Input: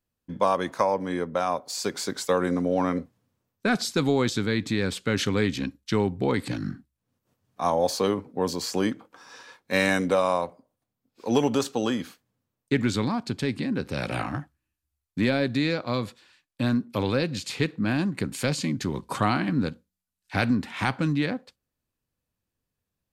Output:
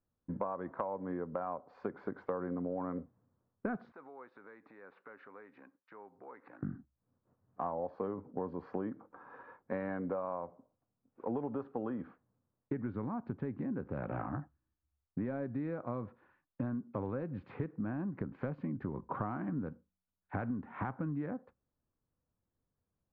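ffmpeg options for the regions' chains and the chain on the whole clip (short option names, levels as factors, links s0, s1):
-filter_complex "[0:a]asettb=1/sr,asplit=3[s0][s1][s2];[s0]atrim=end=3.924[s3];[s1]atrim=start=3.92:end=6.63,asetpts=PTS-STARTPTS,afade=t=in:d=0.004:c=qsin,afade=t=out:st=2.706:d=0.004:c=qsin,bandreject=f=3200:w=5.2,acompressor=threshold=0.0141:ratio=6:attack=3.2:release=140:knee=1:detection=peak,highpass=710,lowpass=7400[s4];[s2]atrim=start=6.626[s5];[s3][s4]acrossfade=d=0.004:c1=hsin:c2=qsin[s6];[s6][s5]acrossfade=d=0.004:c1=qsin:c2=hsin,lowpass=f=1400:w=0.5412,lowpass=f=1400:w=1.3066,acompressor=threshold=0.0224:ratio=6,volume=0.841"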